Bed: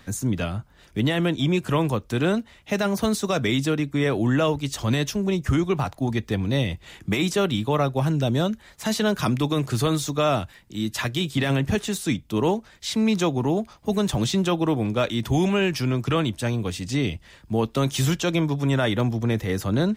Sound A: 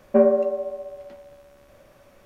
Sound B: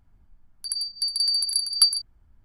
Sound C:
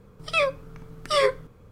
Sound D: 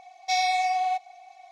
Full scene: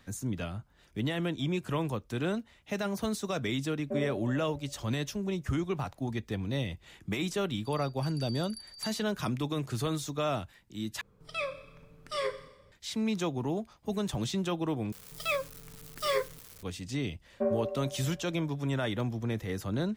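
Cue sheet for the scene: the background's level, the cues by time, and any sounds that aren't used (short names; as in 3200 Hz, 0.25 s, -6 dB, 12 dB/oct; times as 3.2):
bed -9.5 dB
3.76 add A -17 dB + bell 1100 Hz -7 dB 1.1 oct
7.01 add B -14 dB + high shelf 2900 Hz -11 dB
11.01 replace with C -12 dB + Schroeder reverb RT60 1 s, combs from 28 ms, DRR 11.5 dB
14.92 replace with C -8.5 dB + switching spikes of -26.5 dBFS
17.26 add A -13.5 dB
not used: D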